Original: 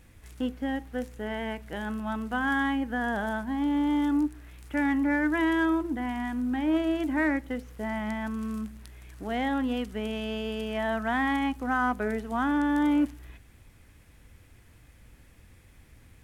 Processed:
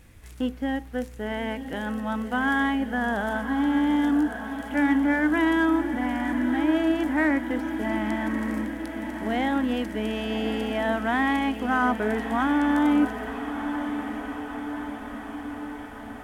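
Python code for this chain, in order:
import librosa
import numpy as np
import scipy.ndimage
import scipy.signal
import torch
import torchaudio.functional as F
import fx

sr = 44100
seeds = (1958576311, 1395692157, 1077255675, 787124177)

y = fx.echo_diffused(x, sr, ms=1134, feedback_pct=66, wet_db=-9)
y = F.gain(torch.from_numpy(y), 3.0).numpy()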